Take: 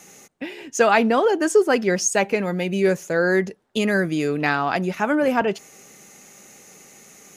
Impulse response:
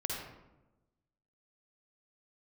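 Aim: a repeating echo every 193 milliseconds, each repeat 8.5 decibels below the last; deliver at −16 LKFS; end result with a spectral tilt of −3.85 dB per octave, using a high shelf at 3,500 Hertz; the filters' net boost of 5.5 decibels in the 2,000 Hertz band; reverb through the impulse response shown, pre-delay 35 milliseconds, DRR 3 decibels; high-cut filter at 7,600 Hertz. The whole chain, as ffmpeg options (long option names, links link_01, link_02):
-filter_complex "[0:a]lowpass=7600,equalizer=frequency=2000:width_type=o:gain=9,highshelf=frequency=3500:gain=-7,aecho=1:1:193|386|579|772:0.376|0.143|0.0543|0.0206,asplit=2[link_01][link_02];[1:a]atrim=start_sample=2205,adelay=35[link_03];[link_02][link_03]afir=irnorm=-1:irlink=0,volume=-6dB[link_04];[link_01][link_04]amix=inputs=2:normalize=0,volume=0.5dB"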